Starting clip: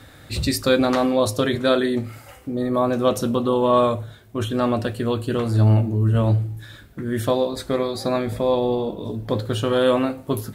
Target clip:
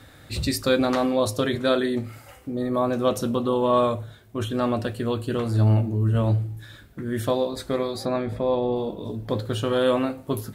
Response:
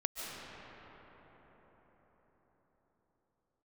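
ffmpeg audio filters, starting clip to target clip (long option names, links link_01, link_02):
-filter_complex "[0:a]asettb=1/sr,asplit=3[link_01][link_02][link_03];[link_01]atrim=end=8.054[link_04];[link_02]atrim=start=8.05:end=8.76,asetpts=PTS-STARTPTS,afade=type=in:duration=0.004:curve=qsin,afade=type=out:start_time=0.706:duration=0.004:curve=qsin,lowpass=frequency=2500:poles=1[link_05];[link_03]atrim=start=8.756[link_06];[link_04][link_05]acrossfade=duration=0.004:curve1=hsin:curve2=qsin[link_07];[link_07][link_06]acrossfade=duration=0.004:curve1=qsin:curve2=hsin,volume=-3dB"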